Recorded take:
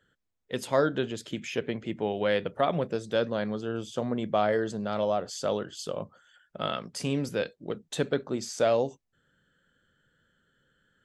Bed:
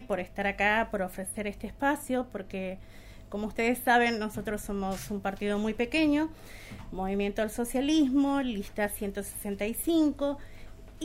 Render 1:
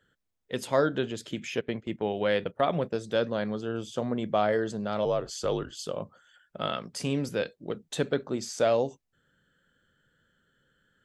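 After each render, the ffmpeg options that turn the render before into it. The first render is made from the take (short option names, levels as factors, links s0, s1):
-filter_complex "[0:a]asettb=1/sr,asplit=3[s0][s1][s2];[s0]atrim=end=1.614[s3];[s1]atrim=start=1.61:end=3.02,asetpts=PTS-STARTPTS,afade=t=in:d=0.004:c=qsin,afade=t=out:st=1.406:d=0.004:c=qsin,agate=range=0.224:threshold=0.01:ratio=16:release=100:detection=peak[s4];[s2]atrim=start=3.016[s5];[s3][s4]acrossfade=d=0.004:c1=hsin:c2=qsin[s6];[s6][s5]acrossfade=d=0.004:c1=qsin:c2=hsin,asettb=1/sr,asplit=3[s7][s8][s9];[s7]atrim=end=5.054[s10];[s8]atrim=start=5.05:end=5.72,asetpts=PTS-STARTPTS,afade=t=in:d=0.004:c=qsin,afade=t=out:st=0.666:d=0.004:c=qsin,afreqshift=-61[s11];[s9]atrim=start=5.716[s12];[s10][s11]acrossfade=d=0.004:c1=hsin:c2=qsin[s13];[s13][s12]acrossfade=d=0.004:c1=qsin:c2=hsin"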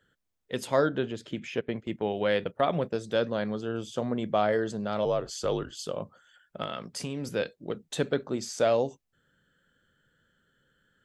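-filter_complex "[0:a]asettb=1/sr,asplit=3[s0][s1][s2];[s0]atrim=end=0.894[s3];[s1]atrim=start=0.89:end=1.76,asetpts=PTS-STARTPTS,afade=t=in:d=0.004:c=qsin,afade=t=out:st=0.866:d=0.004:c=qsin,lowpass=f=2900:p=1[s4];[s2]atrim=start=1.756[s5];[s3][s4]acrossfade=d=0.004:c1=hsin:c2=qsin[s6];[s6][s5]acrossfade=d=0.004:c1=qsin:c2=hsin,asettb=1/sr,asplit=3[s7][s8][s9];[s7]atrim=end=6.634[s10];[s8]atrim=start=6.63:end=7.33,asetpts=PTS-STARTPTS,afade=t=in:d=0.004:c=qsin,afade=t=out:st=0.696:d=0.004:c=qsin,acompressor=threshold=0.0355:ratio=6:attack=3.2:release=140:knee=1:detection=peak[s11];[s9]atrim=start=7.326[s12];[s10][s11]acrossfade=d=0.004:c1=hsin:c2=qsin[s13];[s13][s12]acrossfade=d=0.004:c1=qsin:c2=hsin"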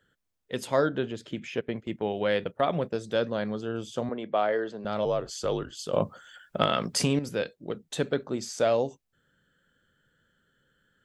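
-filter_complex "[0:a]asettb=1/sr,asplit=3[s0][s1][s2];[s0]atrim=end=4.094[s3];[s1]atrim=start=4.09:end=4.85,asetpts=PTS-STARTPTS,afade=t=in:d=0.004:c=qsin,afade=t=out:st=0.756:d=0.004:c=qsin,acrossover=split=270 4300:gain=0.178 1 0.0708[s4][s5][s6];[s4][s5][s6]amix=inputs=3:normalize=0[s7];[s2]atrim=start=4.846[s8];[s3][s7]acrossfade=d=0.004:c1=hsin:c2=qsin[s9];[s9][s8]acrossfade=d=0.004:c1=qsin:c2=hsin,asplit=3[s10][s11][s12];[s10]atrim=end=5.932[s13];[s11]atrim=start=5.928:end=7.192,asetpts=PTS-STARTPTS,volume=3.16[s14];[s12]atrim=start=7.188[s15];[s13][s14]acrossfade=d=0.004:c1=hsin:c2=hsin[s16];[s16][s15]acrossfade=d=0.004:c1=hsin:c2=hsin"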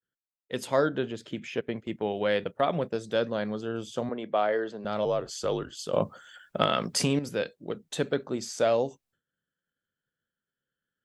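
-af "agate=range=0.0224:threshold=0.00141:ratio=3:detection=peak,lowshelf=f=64:g=-8"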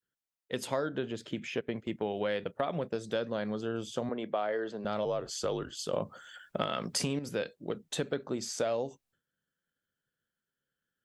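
-af "acompressor=threshold=0.0355:ratio=4"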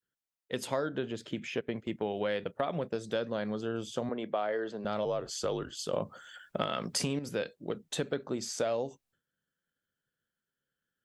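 -af anull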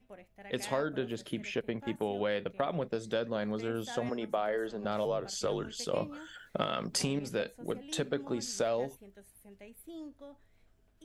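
-filter_complex "[1:a]volume=0.0944[s0];[0:a][s0]amix=inputs=2:normalize=0"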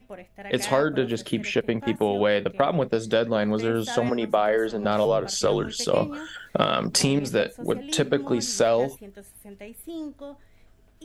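-af "volume=3.35"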